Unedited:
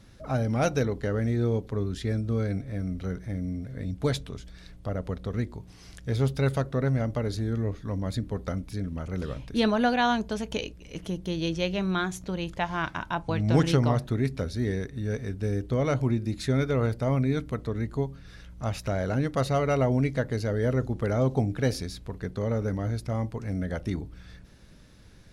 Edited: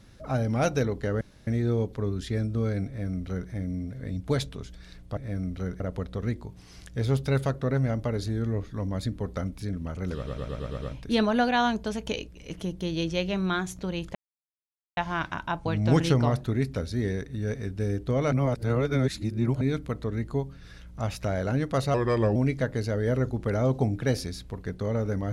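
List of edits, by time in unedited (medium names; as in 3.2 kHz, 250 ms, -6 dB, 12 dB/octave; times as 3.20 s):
1.21 s: insert room tone 0.26 s
2.61–3.24 s: copy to 4.91 s
9.27 s: stutter 0.11 s, 7 plays
12.60 s: insert silence 0.82 s
15.95–17.24 s: reverse
19.57–19.92 s: speed 84%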